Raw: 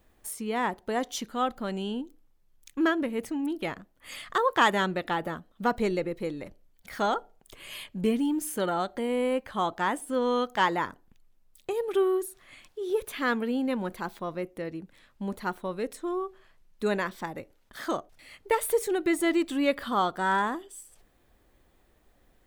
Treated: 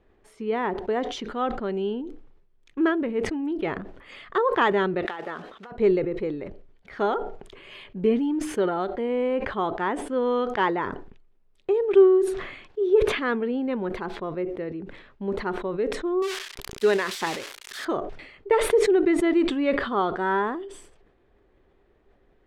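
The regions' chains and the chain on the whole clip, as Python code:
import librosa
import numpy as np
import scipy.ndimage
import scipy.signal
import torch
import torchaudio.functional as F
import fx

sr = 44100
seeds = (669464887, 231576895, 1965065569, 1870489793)

y = fx.chain(x, sr, fx.block_float(bits=5),
    fx.highpass(hz=1100.0, slope=6),
    fx.over_compress(threshold_db=-38.0, ratio=-1.0), at=(5.05, 5.72))
y = fx.chain(y, sr, fx.crossing_spikes(level_db=-22.5),
    fx.tilt_eq(slope=3.0),
    fx.sustainer(db_per_s=63.0), at=(16.22, 17.85))
y = scipy.signal.sosfilt(scipy.signal.butter(2, 2800.0, 'lowpass', fs=sr, output='sos'), y)
y = fx.peak_eq(y, sr, hz=400.0, db=10.5, octaves=0.36)
y = fx.sustainer(y, sr, db_per_s=65.0)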